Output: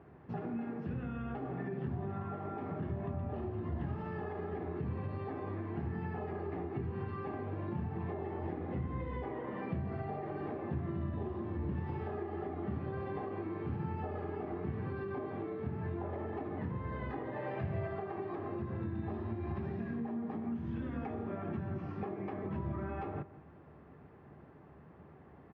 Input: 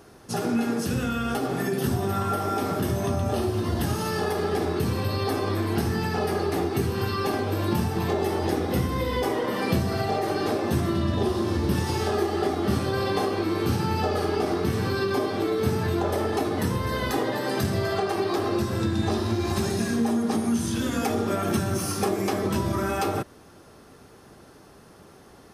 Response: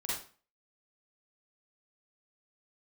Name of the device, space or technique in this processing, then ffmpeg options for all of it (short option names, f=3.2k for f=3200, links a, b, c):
bass amplifier: -filter_complex "[0:a]acompressor=threshold=-32dB:ratio=3,highpass=66,equalizer=f=73:t=q:w=4:g=10,equalizer=f=150:t=q:w=4:g=8,equalizer=f=500:t=q:w=4:g=-3,equalizer=f=1.4k:t=q:w=4:g=-6,lowpass=f=2.1k:w=0.5412,lowpass=f=2.1k:w=1.3066,asettb=1/sr,asplit=3[a][b][c];[a]atrim=end=17.364[d];[b]atrim=start=17.36:end=17.88,asetpts=PTS-STARTPTS,afade=t=in:d=0.004:c=qsin,afade=t=out:st=0.516:d=0.004:c=qsin,equalizer=f=100:t=o:w=0.67:g=4,equalizer=f=250:t=o:w=0.67:g=-6,equalizer=f=630:t=o:w=0.67:g=6,equalizer=f=2.5k:t=o:w=0.67:g=7[e];[c]atrim=start=17.876[f];[d][e]acrossfade=d=0.004:c1=hsin:c2=qsin[g];[g][f]acrossfade=d=0.004:c1=qsin:c2=hsin,asplit=2[h][i];[i]adelay=169.1,volume=-16dB,highshelf=f=4k:g=-3.8[j];[h][j]amix=inputs=2:normalize=0,volume=-6.5dB"